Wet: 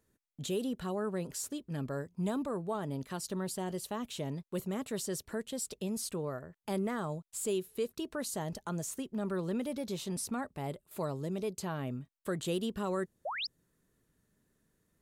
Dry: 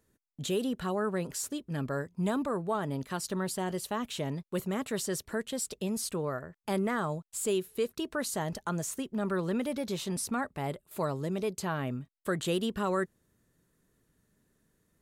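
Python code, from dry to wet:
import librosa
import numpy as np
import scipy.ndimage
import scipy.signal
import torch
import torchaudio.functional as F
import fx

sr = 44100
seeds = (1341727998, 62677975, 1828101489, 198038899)

y = fx.spec_paint(x, sr, seeds[0], shape='rise', start_s=13.25, length_s=0.22, low_hz=520.0, high_hz=5600.0, level_db=-31.0)
y = fx.dynamic_eq(y, sr, hz=1600.0, q=0.85, threshold_db=-47.0, ratio=4.0, max_db=-5)
y = F.gain(torch.from_numpy(y), -3.0).numpy()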